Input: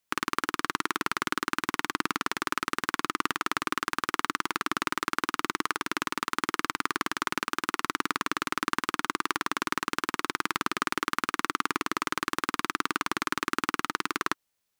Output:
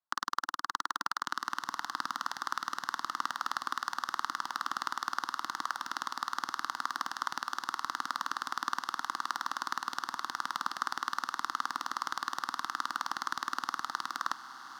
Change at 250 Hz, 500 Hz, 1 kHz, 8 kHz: −17.5, −17.5, −3.5, −7.0 decibels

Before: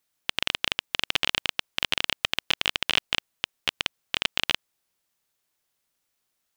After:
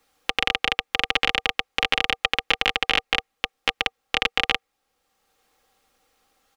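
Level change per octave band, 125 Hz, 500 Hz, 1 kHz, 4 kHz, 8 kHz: +1.0, +8.0, +8.5, +2.0, −2.0 decibels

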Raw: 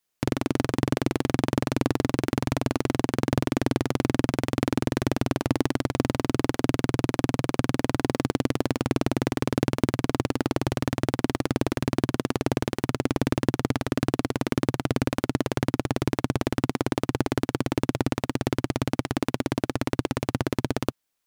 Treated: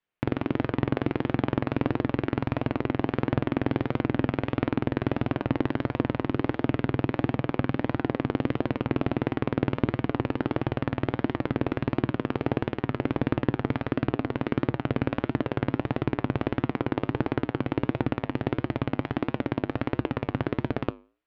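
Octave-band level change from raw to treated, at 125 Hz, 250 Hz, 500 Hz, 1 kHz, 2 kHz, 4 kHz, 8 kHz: −1.5 dB, −1.5 dB, −1.5 dB, −1.5 dB, −1.5 dB, −7.5 dB, below −30 dB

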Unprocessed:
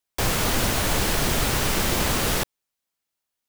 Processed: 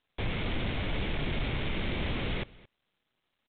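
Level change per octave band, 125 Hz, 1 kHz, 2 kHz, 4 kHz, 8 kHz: −6.5 dB, −14.0 dB, −9.5 dB, −12.0 dB, below −40 dB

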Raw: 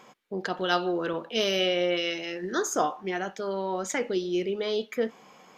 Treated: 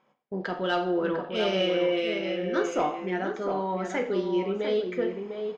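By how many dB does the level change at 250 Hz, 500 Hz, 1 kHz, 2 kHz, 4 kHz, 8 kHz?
+2.5, +1.5, 0.0, −1.0, −4.0, −13.0 decibels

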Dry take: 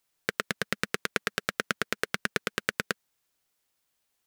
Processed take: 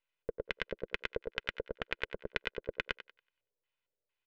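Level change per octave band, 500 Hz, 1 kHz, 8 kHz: −3.0 dB, −11.5 dB, below −25 dB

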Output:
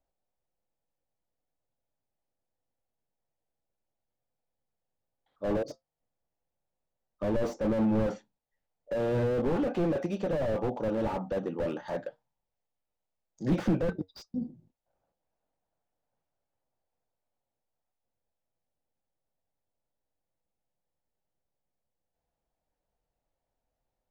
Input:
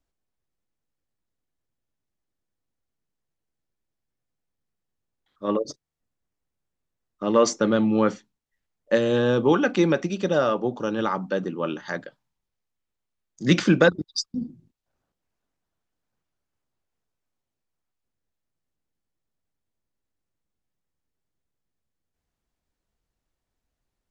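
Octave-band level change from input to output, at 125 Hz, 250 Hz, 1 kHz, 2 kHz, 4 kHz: −5.0, −7.0, −10.0, −15.5, −17.5 decibels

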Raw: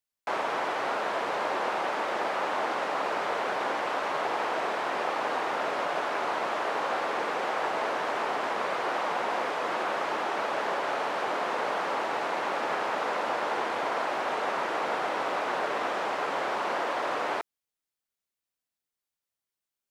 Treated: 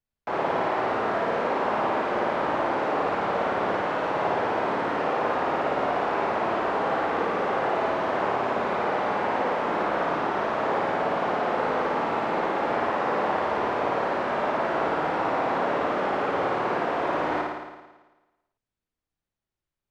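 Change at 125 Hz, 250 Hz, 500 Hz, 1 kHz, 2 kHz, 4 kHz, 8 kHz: +13.5 dB, +9.0 dB, +5.5 dB, +3.5 dB, +1.5 dB, −2.0 dB, can't be measured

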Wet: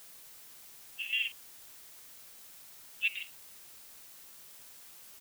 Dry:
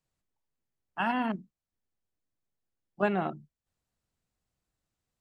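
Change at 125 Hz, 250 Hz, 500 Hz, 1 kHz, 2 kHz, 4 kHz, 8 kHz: below −25 dB, below −35 dB, below −30 dB, −29.5 dB, +1.5 dB, +10.5 dB, can't be measured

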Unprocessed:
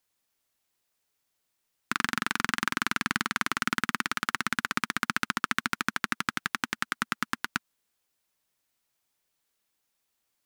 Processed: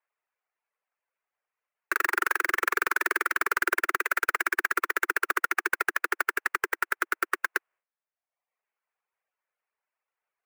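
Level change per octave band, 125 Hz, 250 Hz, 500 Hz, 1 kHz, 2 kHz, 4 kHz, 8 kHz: below −10 dB, −7.0 dB, +10.0 dB, +2.5 dB, +4.5 dB, −7.0 dB, −1.0 dB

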